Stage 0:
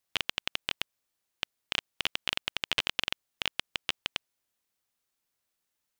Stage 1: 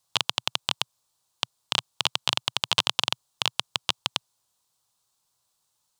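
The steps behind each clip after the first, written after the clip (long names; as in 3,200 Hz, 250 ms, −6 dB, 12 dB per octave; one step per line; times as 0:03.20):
octave-band graphic EQ 125/250/1,000/2,000/4,000/8,000 Hz +10/−4/+11/−9/+7/+8 dB
level +3 dB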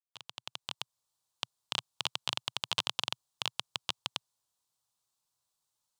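fade in at the beginning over 1.14 s
level −9 dB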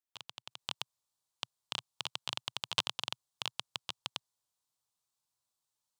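output level in coarse steps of 10 dB
level +2.5 dB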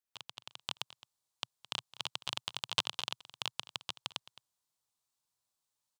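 single-tap delay 215 ms −18 dB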